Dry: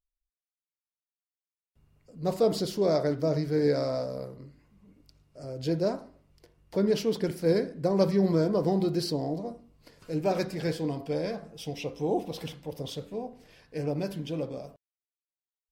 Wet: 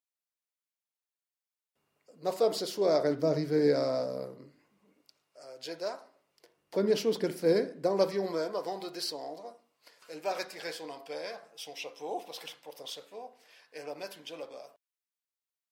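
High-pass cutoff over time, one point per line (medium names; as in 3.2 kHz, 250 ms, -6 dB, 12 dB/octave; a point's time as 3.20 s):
2.74 s 430 Hz
3.17 s 190 Hz
4.21 s 190 Hz
5.46 s 810 Hz
5.98 s 810 Hz
6.90 s 250 Hz
7.62 s 250 Hz
8.62 s 760 Hz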